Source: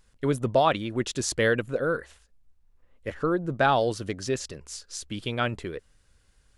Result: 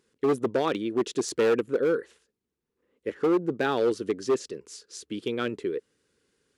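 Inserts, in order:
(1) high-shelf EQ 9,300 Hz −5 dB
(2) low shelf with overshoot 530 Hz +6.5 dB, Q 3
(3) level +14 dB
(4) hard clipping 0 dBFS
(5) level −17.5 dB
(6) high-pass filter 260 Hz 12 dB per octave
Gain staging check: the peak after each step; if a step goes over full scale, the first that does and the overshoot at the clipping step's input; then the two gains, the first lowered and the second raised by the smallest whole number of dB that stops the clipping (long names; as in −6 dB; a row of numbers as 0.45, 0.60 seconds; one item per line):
−8.5, −5.0, +9.0, 0.0, −17.5, −12.0 dBFS
step 3, 9.0 dB
step 3 +5 dB, step 5 −8.5 dB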